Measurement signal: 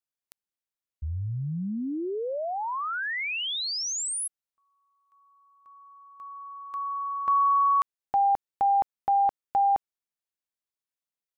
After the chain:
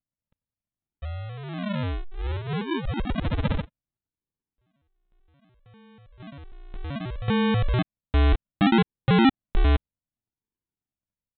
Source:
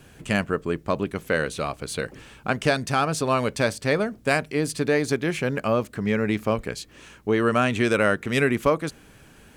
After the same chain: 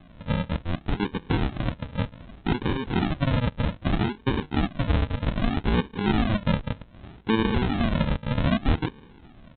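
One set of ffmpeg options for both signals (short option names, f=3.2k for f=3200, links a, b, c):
-af "highshelf=f=2.5k:g=9,aecho=1:1:3.9:0.52,alimiter=limit=-13dB:level=0:latency=1:release=21,aresample=8000,acrusher=samples=17:mix=1:aa=0.000001:lfo=1:lforange=10.2:lforate=0.64,aresample=44100"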